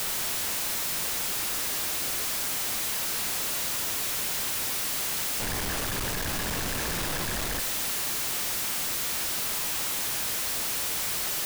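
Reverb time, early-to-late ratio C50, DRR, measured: 1.1 s, 13.0 dB, 11.0 dB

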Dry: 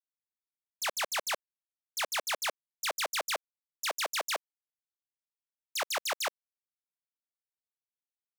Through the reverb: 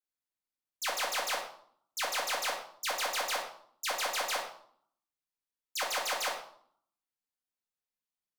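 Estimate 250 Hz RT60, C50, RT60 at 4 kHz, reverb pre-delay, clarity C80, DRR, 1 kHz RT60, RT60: 0.85 s, 6.0 dB, 0.50 s, 4 ms, 9.5 dB, -1.5 dB, 0.60 s, 0.60 s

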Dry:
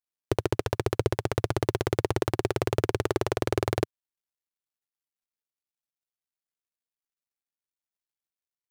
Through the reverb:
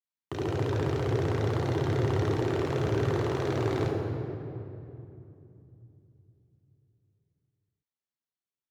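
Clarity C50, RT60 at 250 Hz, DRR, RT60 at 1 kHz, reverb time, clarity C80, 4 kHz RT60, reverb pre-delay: 0.0 dB, 4.5 s, -5.0 dB, 2.6 s, 2.8 s, 1.5 dB, 1.7 s, 3 ms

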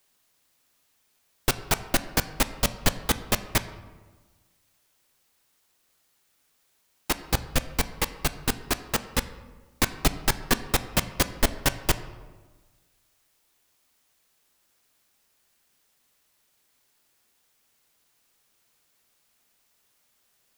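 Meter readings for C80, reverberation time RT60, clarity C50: 15.0 dB, 1.3 s, 14.0 dB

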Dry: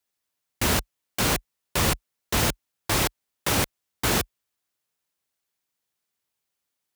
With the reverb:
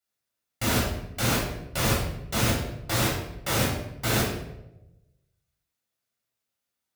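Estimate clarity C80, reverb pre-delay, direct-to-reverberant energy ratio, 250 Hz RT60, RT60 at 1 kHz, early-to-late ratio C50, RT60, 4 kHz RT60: 6.0 dB, 7 ms, -4.5 dB, 1.1 s, 0.80 s, 2.5 dB, 0.95 s, 0.60 s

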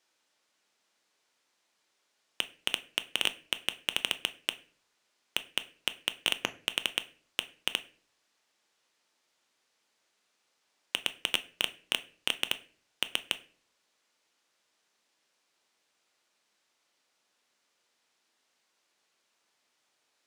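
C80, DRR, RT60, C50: 22.0 dB, 11.0 dB, 0.45 s, 18.0 dB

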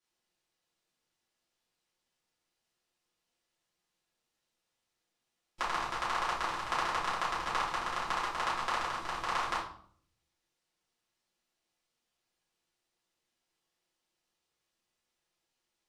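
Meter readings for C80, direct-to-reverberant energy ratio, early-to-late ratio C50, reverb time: 10.5 dB, -9.0 dB, 5.0 dB, 0.60 s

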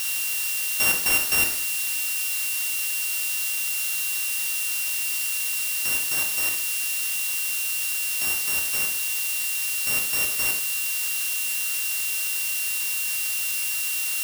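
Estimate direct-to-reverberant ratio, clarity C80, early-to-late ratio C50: 3.0 dB, 11.0 dB, 7.0 dB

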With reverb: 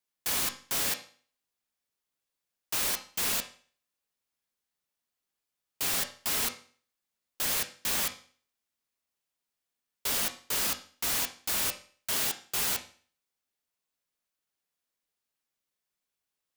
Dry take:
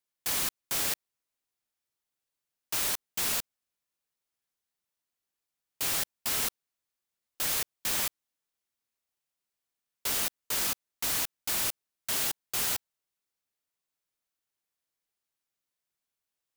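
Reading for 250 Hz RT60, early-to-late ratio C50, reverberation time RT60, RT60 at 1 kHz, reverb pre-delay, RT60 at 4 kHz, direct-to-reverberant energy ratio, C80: 0.45 s, 12.5 dB, 0.45 s, 0.45 s, 4 ms, 0.45 s, 5.0 dB, 17.0 dB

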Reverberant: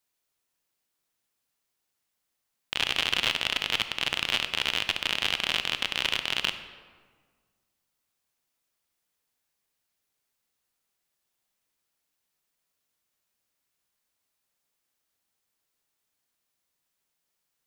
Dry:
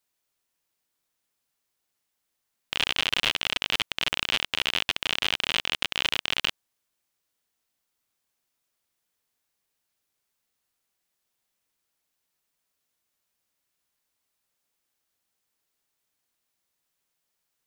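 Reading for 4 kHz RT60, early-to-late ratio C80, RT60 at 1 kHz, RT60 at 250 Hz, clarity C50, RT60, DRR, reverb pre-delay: 0.95 s, 12.0 dB, 1.6 s, 1.8 s, 10.5 dB, 1.6 s, 9.5 dB, 23 ms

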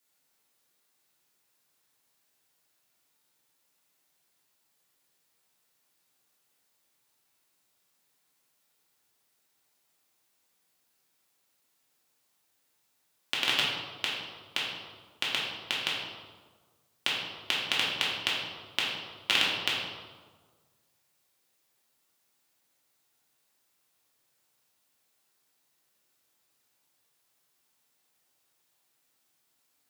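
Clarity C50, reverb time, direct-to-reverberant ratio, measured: 0.5 dB, 1.5 s, -6.0 dB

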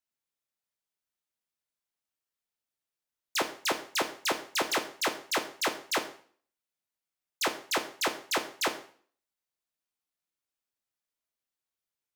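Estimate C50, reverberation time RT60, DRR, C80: 11.5 dB, 0.45 s, 6.0 dB, 15.0 dB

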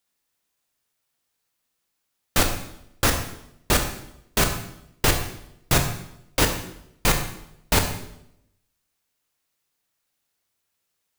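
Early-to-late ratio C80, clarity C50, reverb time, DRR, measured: 10.0 dB, 7.5 dB, 0.80 s, 4.0 dB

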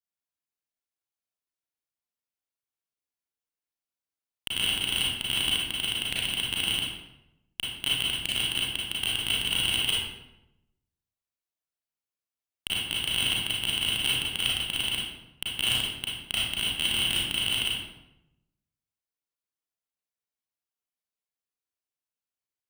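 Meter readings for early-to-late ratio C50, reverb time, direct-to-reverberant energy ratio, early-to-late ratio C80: -1.0 dB, 0.90 s, -5.5 dB, 3.5 dB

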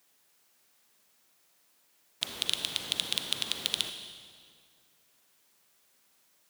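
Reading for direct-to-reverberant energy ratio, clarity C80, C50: 7.0 dB, 8.5 dB, 7.5 dB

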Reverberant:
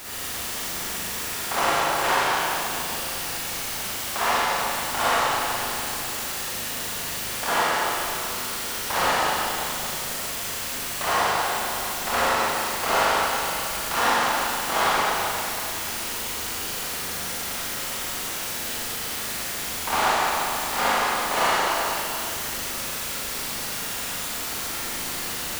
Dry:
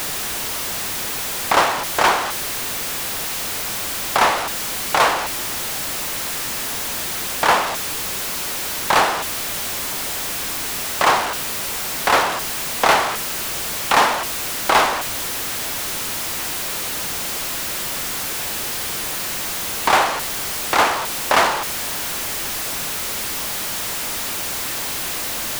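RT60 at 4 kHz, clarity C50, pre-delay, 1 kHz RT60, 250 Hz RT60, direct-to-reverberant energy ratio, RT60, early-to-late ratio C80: 2.6 s, -7.5 dB, 39 ms, 2.8 s, 2.8 s, -10.5 dB, 2.8 s, -4.5 dB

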